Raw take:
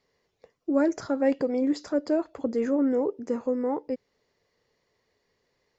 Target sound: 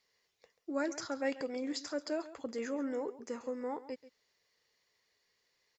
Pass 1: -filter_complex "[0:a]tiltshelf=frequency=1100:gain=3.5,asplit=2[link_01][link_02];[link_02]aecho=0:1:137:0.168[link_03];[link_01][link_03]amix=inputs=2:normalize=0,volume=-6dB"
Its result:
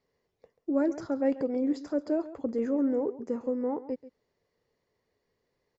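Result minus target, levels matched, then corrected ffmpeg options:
1,000 Hz band −6.0 dB
-filter_complex "[0:a]tiltshelf=frequency=1100:gain=-8.5,asplit=2[link_01][link_02];[link_02]aecho=0:1:137:0.168[link_03];[link_01][link_03]amix=inputs=2:normalize=0,volume=-6dB"

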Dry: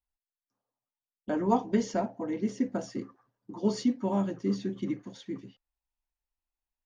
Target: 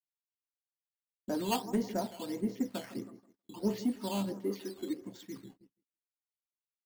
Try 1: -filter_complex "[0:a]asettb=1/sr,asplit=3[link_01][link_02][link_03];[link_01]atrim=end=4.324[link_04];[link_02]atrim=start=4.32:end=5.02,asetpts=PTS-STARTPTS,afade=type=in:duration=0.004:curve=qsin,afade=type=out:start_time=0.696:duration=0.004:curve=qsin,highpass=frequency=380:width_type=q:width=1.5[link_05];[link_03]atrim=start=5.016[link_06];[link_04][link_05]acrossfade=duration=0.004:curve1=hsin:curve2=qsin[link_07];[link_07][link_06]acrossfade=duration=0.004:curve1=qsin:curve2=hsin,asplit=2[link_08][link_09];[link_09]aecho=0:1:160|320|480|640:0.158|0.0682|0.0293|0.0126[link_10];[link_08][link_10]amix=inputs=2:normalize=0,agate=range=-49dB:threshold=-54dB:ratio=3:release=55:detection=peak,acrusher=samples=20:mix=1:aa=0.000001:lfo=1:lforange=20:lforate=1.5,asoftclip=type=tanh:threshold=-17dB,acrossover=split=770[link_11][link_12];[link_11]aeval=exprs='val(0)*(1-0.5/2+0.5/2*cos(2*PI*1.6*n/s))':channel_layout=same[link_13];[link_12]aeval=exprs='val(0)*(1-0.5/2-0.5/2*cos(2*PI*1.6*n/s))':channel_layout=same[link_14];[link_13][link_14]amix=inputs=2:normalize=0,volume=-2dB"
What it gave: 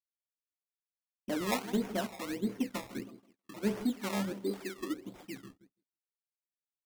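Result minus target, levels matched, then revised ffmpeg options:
sample-and-hold swept by an LFO: distortion +8 dB
-filter_complex "[0:a]asettb=1/sr,asplit=3[link_01][link_02][link_03];[link_01]atrim=end=4.324[link_04];[link_02]atrim=start=4.32:end=5.02,asetpts=PTS-STARTPTS,afade=type=in:duration=0.004:curve=qsin,afade=type=out:start_time=0.696:duration=0.004:curve=qsin,highpass=frequency=380:width_type=q:width=1.5[link_05];[link_03]atrim=start=5.016[link_06];[link_04][link_05]acrossfade=duration=0.004:curve1=hsin:curve2=qsin[link_07];[link_07][link_06]acrossfade=duration=0.004:curve1=qsin:curve2=hsin,asplit=2[link_08][link_09];[link_09]aecho=0:1:160|320|480|640:0.158|0.0682|0.0293|0.0126[link_10];[link_08][link_10]amix=inputs=2:normalize=0,agate=range=-49dB:threshold=-54dB:ratio=3:release=55:detection=peak,acrusher=samples=8:mix=1:aa=0.000001:lfo=1:lforange=8:lforate=1.5,asoftclip=type=tanh:threshold=-17dB,acrossover=split=770[link_11][link_12];[link_11]aeval=exprs='val(0)*(1-0.5/2+0.5/2*cos(2*PI*1.6*n/s))':channel_layout=same[link_13];[link_12]aeval=exprs='val(0)*(1-0.5/2-0.5/2*cos(2*PI*1.6*n/s))':channel_layout=same[link_14];[link_13][link_14]amix=inputs=2:normalize=0,volume=-2dB"

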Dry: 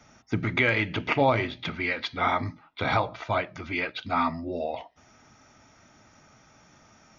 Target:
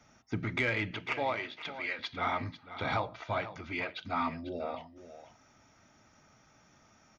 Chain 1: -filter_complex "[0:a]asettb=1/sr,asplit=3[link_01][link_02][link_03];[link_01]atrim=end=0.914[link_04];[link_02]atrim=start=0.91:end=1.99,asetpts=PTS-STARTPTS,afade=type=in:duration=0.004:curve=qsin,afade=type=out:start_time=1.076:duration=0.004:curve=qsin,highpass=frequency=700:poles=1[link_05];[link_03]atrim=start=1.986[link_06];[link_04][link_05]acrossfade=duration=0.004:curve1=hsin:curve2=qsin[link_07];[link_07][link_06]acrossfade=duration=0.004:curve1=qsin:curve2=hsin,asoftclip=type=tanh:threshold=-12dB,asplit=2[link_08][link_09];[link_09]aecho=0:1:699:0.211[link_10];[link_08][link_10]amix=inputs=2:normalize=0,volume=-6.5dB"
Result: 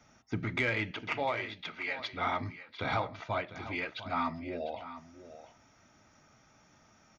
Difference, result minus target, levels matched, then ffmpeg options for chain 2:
echo 204 ms late
-filter_complex "[0:a]asettb=1/sr,asplit=3[link_01][link_02][link_03];[link_01]atrim=end=0.914[link_04];[link_02]atrim=start=0.91:end=1.99,asetpts=PTS-STARTPTS,afade=type=in:duration=0.004:curve=qsin,afade=type=out:start_time=1.076:duration=0.004:curve=qsin,highpass=frequency=700:poles=1[link_05];[link_03]atrim=start=1.986[link_06];[link_04][link_05]acrossfade=duration=0.004:curve1=hsin:curve2=qsin[link_07];[link_07][link_06]acrossfade=duration=0.004:curve1=qsin:curve2=hsin,asoftclip=type=tanh:threshold=-12dB,asplit=2[link_08][link_09];[link_09]aecho=0:1:495:0.211[link_10];[link_08][link_10]amix=inputs=2:normalize=0,volume=-6.5dB"

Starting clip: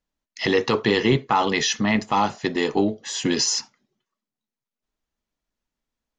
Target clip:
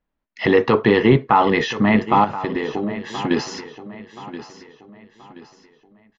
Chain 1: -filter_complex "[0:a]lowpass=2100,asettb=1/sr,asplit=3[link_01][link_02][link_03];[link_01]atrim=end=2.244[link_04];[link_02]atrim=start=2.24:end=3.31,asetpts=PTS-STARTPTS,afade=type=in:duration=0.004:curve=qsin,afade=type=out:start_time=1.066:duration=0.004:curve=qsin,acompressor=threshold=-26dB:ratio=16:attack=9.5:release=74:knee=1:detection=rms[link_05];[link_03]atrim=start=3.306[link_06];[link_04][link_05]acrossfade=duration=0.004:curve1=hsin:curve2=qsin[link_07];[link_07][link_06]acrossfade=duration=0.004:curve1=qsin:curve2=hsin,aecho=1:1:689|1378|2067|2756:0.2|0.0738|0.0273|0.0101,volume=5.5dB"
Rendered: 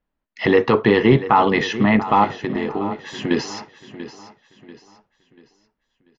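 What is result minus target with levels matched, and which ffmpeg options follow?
echo 338 ms early
-filter_complex "[0:a]lowpass=2100,asettb=1/sr,asplit=3[link_01][link_02][link_03];[link_01]atrim=end=2.244[link_04];[link_02]atrim=start=2.24:end=3.31,asetpts=PTS-STARTPTS,afade=type=in:duration=0.004:curve=qsin,afade=type=out:start_time=1.066:duration=0.004:curve=qsin,acompressor=threshold=-26dB:ratio=16:attack=9.5:release=74:knee=1:detection=rms[link_05];[link_03]atrim=start=3.306[link_06];[link_04][link_05]acrossfade=duration=0.004:curve1=hsin:curve2=qsin[link_07];[link_07][link_06]acrossfade=duration=0.004:curve1=qsin:curve2=hsin,aecho=1:1:1027|2054|3081|4108:0.2|0.0738|0.0273|0.0101,volume=5.5dB"

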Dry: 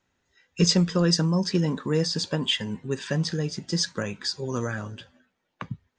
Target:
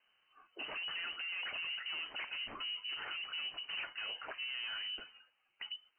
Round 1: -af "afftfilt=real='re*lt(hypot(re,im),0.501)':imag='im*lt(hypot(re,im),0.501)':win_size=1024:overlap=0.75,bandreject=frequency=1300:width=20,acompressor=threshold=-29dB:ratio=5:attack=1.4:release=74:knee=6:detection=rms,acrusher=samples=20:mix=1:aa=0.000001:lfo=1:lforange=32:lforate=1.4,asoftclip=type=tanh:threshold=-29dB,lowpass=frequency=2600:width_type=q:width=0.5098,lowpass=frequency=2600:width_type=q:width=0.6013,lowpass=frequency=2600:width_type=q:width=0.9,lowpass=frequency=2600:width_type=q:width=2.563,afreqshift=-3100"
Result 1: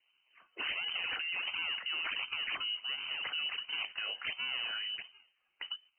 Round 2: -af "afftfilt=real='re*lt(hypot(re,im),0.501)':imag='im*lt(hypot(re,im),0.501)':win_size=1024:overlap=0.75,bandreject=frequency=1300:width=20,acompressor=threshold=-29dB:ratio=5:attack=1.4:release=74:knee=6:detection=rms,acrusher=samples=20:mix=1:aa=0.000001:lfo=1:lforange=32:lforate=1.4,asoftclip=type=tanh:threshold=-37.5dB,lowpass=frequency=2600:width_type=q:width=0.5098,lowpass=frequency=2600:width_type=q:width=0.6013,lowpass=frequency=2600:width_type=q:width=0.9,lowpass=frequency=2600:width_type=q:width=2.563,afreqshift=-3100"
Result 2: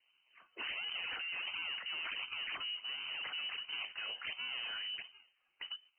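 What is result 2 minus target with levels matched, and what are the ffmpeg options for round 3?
sample-and-hold swept by an LFO: distortion +5 dB
-af "afftfilt=real='re*lt(hypot(re,im),0.501)':imag='im*lt(hypot(re,im),0.501)':win_size=1024:overlap=0.75,bandreject=frequency=1300:width=20,acompressor=threshold=-29dB:ratio=5:attack=1.4:release=74:knee=6:detection=rms,acrusher=samples=5:mix=1:aa=0.000001:lfo=1:lforange=8:lforate=1.4,asoftclip=type=tanh:threshold=-37.5dB,lowpass=frequency=2600:width_type=q:width=0.5098,lowpass=frequency=2600:width_type=q:width=0.6013,lowpass=frequency=2600:width_type=q:width=0.9,lowpass=frequency=2600:width_type=q:width=2.563,afreqshift=-3100"

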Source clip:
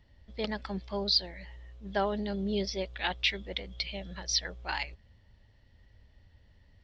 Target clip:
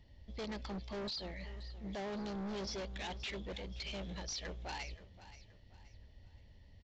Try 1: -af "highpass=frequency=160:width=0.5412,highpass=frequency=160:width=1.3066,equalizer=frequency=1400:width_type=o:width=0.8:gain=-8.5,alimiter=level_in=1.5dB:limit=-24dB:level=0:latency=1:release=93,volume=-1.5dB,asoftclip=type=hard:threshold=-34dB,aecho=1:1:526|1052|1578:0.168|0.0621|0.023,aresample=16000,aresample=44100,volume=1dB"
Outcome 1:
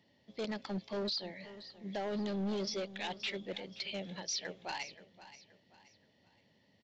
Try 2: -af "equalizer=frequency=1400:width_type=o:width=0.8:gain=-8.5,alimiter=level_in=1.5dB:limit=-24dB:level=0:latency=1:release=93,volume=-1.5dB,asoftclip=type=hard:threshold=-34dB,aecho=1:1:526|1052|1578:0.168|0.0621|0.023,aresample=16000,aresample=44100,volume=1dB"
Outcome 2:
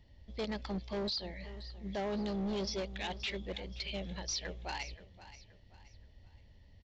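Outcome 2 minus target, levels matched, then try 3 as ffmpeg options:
hard clipping: distortion −6 dB
-af "equalizer=frequency=1400:width_type=o:width=0.8:gain=-8.5,alimiter=level_in=1.5dB:limit=-24dB:level=0:latency=1:release=93,volume=-1.5dB,asoftclip=type=hard:threshold=-40.5dB,aecho=1:1:526|1052|1578:0.168|0.0621|0.023,aresample=16000,aresample=44100,volume=1dB"

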